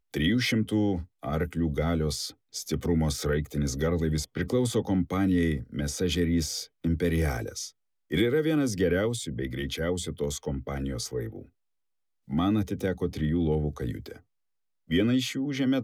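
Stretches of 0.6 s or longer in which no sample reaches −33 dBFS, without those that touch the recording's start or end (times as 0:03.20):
0:11.39–0:12.30
0:14.12–0:14.91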